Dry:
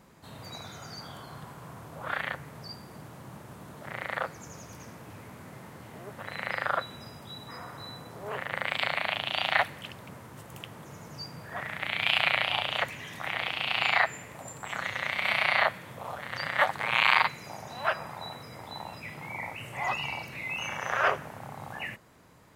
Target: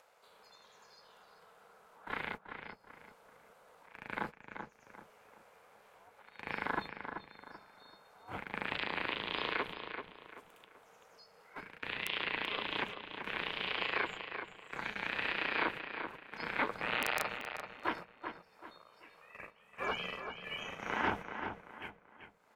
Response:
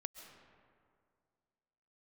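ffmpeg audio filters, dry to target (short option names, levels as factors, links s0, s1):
-filter_complex "[0:a]agate=range=0.0447:threshold=0.02:ratio=16:detection=peak,acrossover=split=4900[s0][s1];[s1]acompressor=threshold=0.002:ratio=4:attack=1:release=60[s2];[s0][s2]amix=inputs=2:normalize=0,highshelf=f=4700:g=-6,bandreject=f=1500:w=6.5,aeval=exprs='val(0)*sin(2*PI*320*n/s)':c=same,acrossover=split=510[s3][s4];[s4]acompressor=mode=upward:threshold=0.00708:ratio=2.5[s5];[s3][s5]amix=inputs=2:normalize=0,aeval=exprs='(mod(3.35*val(0)+1,2)-1)/3.35':c=same,alimiter=limit=0.133:level=0:latency=1:release=225,asplit=2[s6][s7];[s7]adelay=385,lowpass=f=3300:p=1,volume=0.447,asplit=2[s8][s9];[s9]adelay=385,lowpass=f=3300:p=1,volume=0.36,asplit=2[s10][s11];[s11]adelay=385,lowpass=f=3300:p=1,volume=0.36,asplit=2[s12][s13];[s13]adelay=385,lowpass=f=3300:p=1,volume=0.36[s14];[s6][s8][s10][s12][s14]amix=inputs=5:normalize=0,volume=0.794"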